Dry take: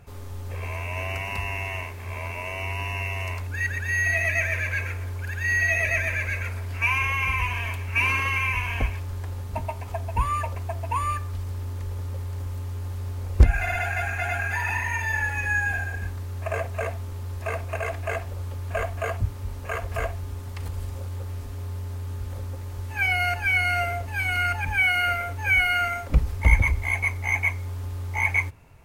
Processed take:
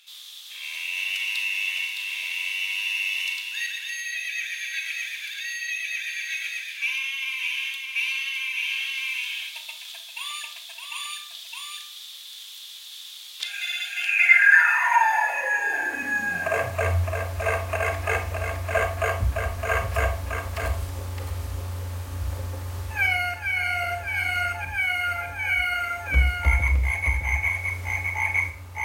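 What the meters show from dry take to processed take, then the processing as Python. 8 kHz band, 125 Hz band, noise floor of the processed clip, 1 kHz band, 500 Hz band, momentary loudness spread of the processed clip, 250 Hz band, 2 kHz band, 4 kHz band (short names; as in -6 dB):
+3.5 dB, -3.5 dB, -41 dBFS, +1.0 dB, +1.5 dB, 12 LU, -4.5 dB, +2.0 dB, +7.0 dB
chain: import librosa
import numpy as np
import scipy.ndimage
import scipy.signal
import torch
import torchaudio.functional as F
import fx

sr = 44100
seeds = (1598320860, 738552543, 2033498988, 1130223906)

y = fx.low_shelf(x, sr, hz=270.0, db=-11.0)
y = fx.hum_notches(y, sr, base_hz=50, count=5)
y = y + 10.0 ** (-5.5 / 20.0) * np.pad(y, (int(613 * sr / 1000.0), 0))[:len(y)]
y = fx.rev_schroeder(y, sr, rt60_s=0.37, comb_ms=28, drr_db=7.5)
y = fx.rider(y, sr, range_db=5, speed_s=0.5)
y = fx.filter_sweep_highpass(y, sr, from_hz=3500.0, to_hz=65.0, start_s=13.9, end_s=17.2, q=7.6)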